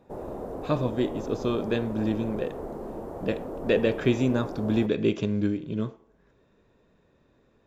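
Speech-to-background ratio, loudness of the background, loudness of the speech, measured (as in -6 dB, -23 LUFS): 9.0 dB, -37.0 LUFS, -28.0 LUFS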